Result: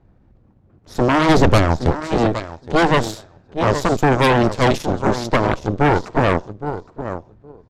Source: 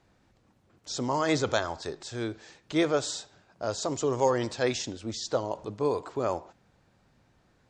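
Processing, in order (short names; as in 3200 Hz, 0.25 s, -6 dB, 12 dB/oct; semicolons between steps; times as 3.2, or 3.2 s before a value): tilt -3 dB/oct; feedback echo 0.816 s, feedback 20%, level -10 dB; added harmonics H 4 -12 dB, 8 -7 dB, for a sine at -9.5 dBFS; in parallel at -9 dB: soft clip -25.5 dBFS, distortion -4 dB; 1.29–1.93 on the sum: low shelf 230 Hz +7.5 dB; mismatched tape noise reduction decoder only; gain +1.5 dB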